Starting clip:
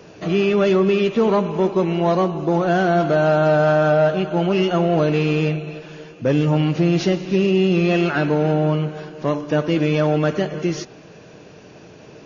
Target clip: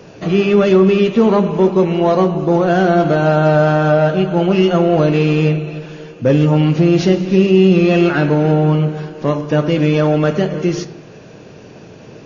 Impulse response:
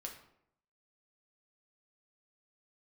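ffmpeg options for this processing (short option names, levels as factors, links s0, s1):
-filter_complex "[0:a]asplit=2[s0][s1];[1:a]atrim=start_sample=2205,lowshelf=f=500:g=9[s2];[s1][s2]afir=irnorm=-1:irlink=0,volume=0.708[s3];[s0][s3]amix=inputs=2:normalize=0"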